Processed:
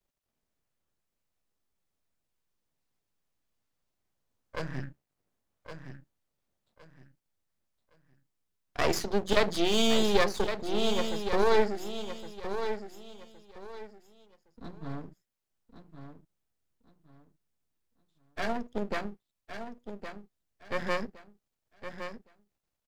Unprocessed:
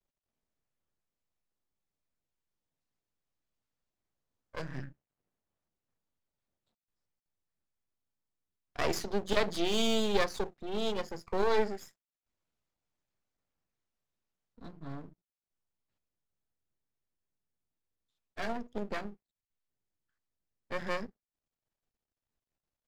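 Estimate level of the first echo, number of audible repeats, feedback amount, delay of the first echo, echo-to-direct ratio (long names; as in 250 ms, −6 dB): −9.0 dB, 3, 27%, 1,114 ms, −8.5 dB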